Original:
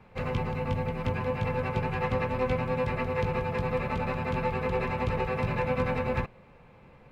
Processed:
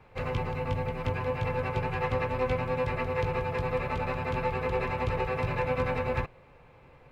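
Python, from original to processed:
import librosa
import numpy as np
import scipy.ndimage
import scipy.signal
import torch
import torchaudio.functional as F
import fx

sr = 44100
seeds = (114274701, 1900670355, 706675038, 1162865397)

y = fx.peak_eq(x, sr, hz=200.0, db=-13.0, octaves=0.34)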